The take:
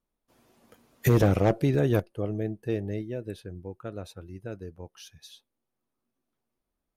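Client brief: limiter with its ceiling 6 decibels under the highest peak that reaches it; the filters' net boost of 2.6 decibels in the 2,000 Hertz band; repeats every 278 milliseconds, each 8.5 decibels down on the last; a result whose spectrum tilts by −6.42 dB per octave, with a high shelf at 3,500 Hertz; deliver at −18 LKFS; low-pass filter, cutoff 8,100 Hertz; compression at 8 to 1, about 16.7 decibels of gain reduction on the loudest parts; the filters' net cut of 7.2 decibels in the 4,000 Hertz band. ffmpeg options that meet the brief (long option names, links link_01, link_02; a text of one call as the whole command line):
ffmpeg -i in.wav -af "lowpass=8100,equalizer=frequency=2000:width_type=o:gain=6.5,highshelf=frequency=3500:gain=-6.5,equalizer=frequency=4000:width_type=o:gain=-7.5,acompressor=threshold=-34dB:ratio=8,alimiter=level_in=6dB:limit=-24dB:level=0:latency=1,volume=-6dB,aecho=1:1:278|556|834|1112:0.376|0.143|0.0543|0.0206,volume=24dB" out.wav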